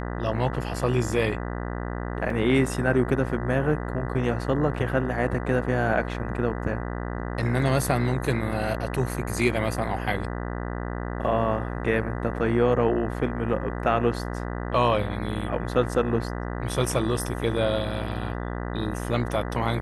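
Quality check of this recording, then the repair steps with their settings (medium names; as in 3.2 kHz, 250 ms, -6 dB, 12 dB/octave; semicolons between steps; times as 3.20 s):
buzz 60 Hz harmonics 33 -31 dBFS
2.30 s: dropout 3.1 ms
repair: de-hum 60 Hz, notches 33; interpolate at 2.30 s, 3.1 ms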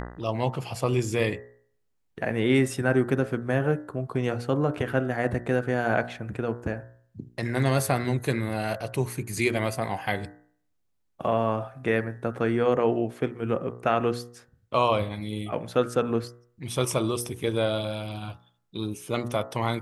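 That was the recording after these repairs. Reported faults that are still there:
nothing left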